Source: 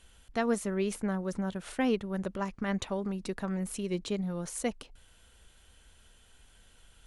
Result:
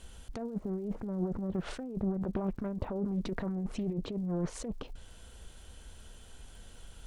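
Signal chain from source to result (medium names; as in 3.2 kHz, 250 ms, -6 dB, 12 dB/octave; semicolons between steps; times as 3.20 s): treble shelf 8.9 kHz -5.5 dB; low-pass that closes with the level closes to 740 Hz, closed at -28.5 dBFS; compressor with a negative ratio -38 dBFS, ratio -1; crackle 220 per s -59 dBFS; peaking EQ 2.1 kHz -7.5 dB 2 oct; loudspeaker Doppler distortion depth 0.44 ms; trim +4.5 dB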